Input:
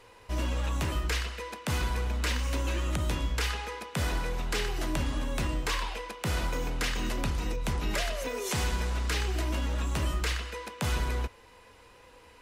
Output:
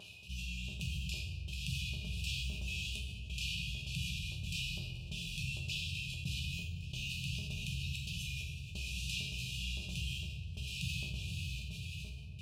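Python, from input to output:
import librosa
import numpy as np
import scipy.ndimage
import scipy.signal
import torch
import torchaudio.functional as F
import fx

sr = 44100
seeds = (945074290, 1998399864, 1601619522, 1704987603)

p1 = fx.vibrato(x, sr, rate_hz=1.4, depth_cents=47.0)
p2 = fx.brickwall_bandstop(p1, sr, low_hz=170.0, high_hz=2400.0)
p3 = fx.high_shelf(p2, sr, hz=4400.0, db=-10.5)
p4 = p3 + fx.echo_diffused(p3, sr, ms=529, feedback_pct=48, wet_db=-5, dry=0)
p5 = fx.step_gate(p4, sr, bpm=132, pattern='x.xxxx.xxx...xxx', floor_db=-24.0, edge_ms=4.5)
p6 = scipy.signal.sosfilt(scipy.signal.butter(2, 110.0, 'highpass', fs=sr, output='sos'), p5)
p7 = fx.peak_eq(p6, sr, hz=630.0, db=15.0, octaves=2.1)
p8 = fx.resonator_bank(p7, sr, root=37, chord='major', decay_s=0.49)
p9 = fx.room_shoebox(p8, sr, seeds[0], volume_m3=1100.0, walls='mixed', distance_m=1.2)
p10 = fx.env_flatten(p9, sr, amount_pct=50)
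y = p10 * librosa.db_to_amplitude(9.0)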